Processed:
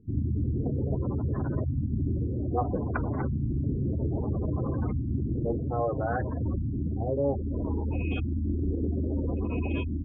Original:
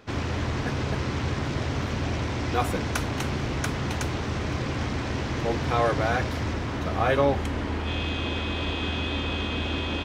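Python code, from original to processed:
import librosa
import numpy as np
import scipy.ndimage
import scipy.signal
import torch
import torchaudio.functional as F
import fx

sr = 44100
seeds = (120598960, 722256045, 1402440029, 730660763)

y = fx.filter_lfo_lowpass(x, sr, shape='saw_up', hz=0.61, low_hz=200.0, high_hz=2600.0, q=0.83)
y = fx.rider(y, sr, range_db=10, speed_s=0.5)
y = fx.spec_gate(y, sr, threshold_db=-15, keep='strong')
y = fx.doppler_dist(y, sr, depth_ms=0.15)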